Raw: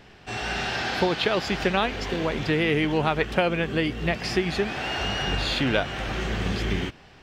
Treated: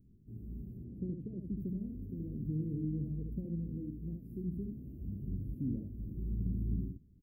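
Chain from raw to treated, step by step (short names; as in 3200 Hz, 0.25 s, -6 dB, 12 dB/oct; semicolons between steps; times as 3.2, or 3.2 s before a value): 0.77–1.57 air absorption 52 m; inverse Chebyshev band-stop 810–6600 Hz, stop band 60 dB; 3.74–4.41 low shelf 170 Hz -7.5 dB; on a send: echo 71 ms -4.5 dB; on the sum: gain -8.5 dB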